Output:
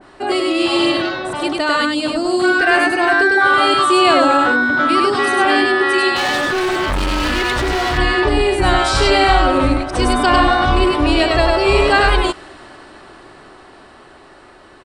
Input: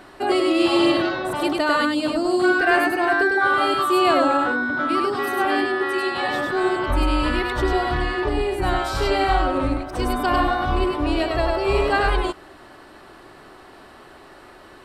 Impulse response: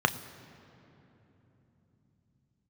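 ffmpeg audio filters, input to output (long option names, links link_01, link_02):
-filter_complex "[0:a]dynaudnorm=framelen=660:gausssize=9:maxgain=11.5dB,asplit=2[link_01][link_02];[link_02]alimiter=limit=-8dB:level=0:latency=1,volume=-1.5dB[link_03];[link_01][link_03]amix=inputs=2:normalize=0,aresample=22050,aresample=44100,asettb=1/sr,asplit=3[link_04][link_05][link_06];[link_04]atrim=end=6.164[link_07];[link_05]atrim=start=6.16:end=7.98,asetpts=PTS-STARTPTS,afade=type=in:duration=0.004:curve=qsin,afade=type=out:start_time=1.816:duration=0.004:curve=qsin,asoftclip=type=hard:threshold=-12dB[link_08];[link_06]atrim=start=7.976[link_09];[link_07][link_08]acrossfade=duration=0.004:curve1=hsin:curve2=qsin[link_10];[link_10][link_09]acrossfade=duration=0.004:curve1=qsin:curve2=hsin,adynamicequalizer=threshold=0.0794:dfrequency=1700:dqfactor=0.7:tfrequency=1700:tqfactor=0.7:attack=5:release=100:ratio=0.375:range=2.5:mode=boostabove:tftype=highshelf,volume=-4dB"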